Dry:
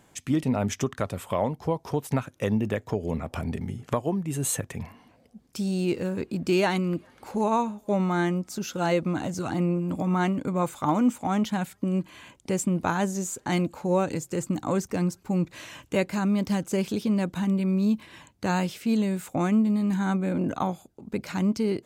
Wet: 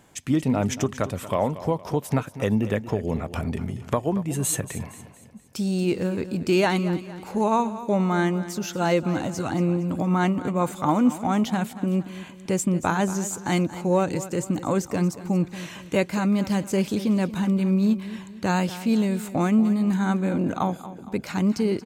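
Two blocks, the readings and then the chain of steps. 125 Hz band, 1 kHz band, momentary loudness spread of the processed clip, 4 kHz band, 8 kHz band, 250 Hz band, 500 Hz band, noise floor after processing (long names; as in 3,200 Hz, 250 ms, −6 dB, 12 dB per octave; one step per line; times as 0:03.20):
+2.5 dB, +2.5 dB, 8 LU, +2.5 dB, +2.5 dB, +2.5 dB, +2.5 dB, −43 dBFS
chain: repeating echo 231 ms, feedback 44%, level −14.5 dB
level +2.5 dB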